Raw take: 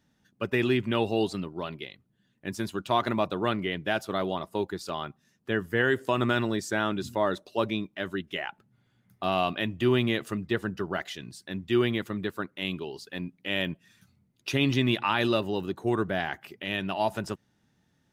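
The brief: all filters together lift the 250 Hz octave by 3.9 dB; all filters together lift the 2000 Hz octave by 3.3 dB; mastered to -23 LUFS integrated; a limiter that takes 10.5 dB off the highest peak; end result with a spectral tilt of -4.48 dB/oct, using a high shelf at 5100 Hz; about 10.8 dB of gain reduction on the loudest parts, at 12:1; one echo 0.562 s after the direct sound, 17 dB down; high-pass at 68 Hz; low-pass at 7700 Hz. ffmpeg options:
-af "highpass=68,lowpass=7.7k,equalizer=f=250:t=o:g=5,equalizer=f=2k:t=o:g=5,highshelf=f=5.1k:g=-5,acompressor=threshold=-27dB:ratio=12,alimiter=level_in=1.5dB:limit=-24dB:level=0:latency=1,volume=-1.5dB,aecho=1:1:562:0.141,volume=14.5dB"

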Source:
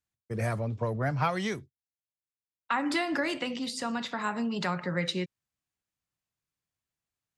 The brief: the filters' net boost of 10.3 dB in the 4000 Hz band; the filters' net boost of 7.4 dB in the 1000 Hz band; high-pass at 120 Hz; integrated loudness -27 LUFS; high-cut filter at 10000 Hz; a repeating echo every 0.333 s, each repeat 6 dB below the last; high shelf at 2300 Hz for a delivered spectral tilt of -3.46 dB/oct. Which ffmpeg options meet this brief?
-af "highpass=120,lowpass=10k,equalizer=f=1k:t=o:g=7.5,highshelf=f=2.3k:g=7.5,equalizer=f=4k:t=o:g=5.5,aecho=1:1:333|666|999|1332|1665|1998:0.501|0.251|0.125|0.0626|0.0313|0.0157,volume=-1.5dB"

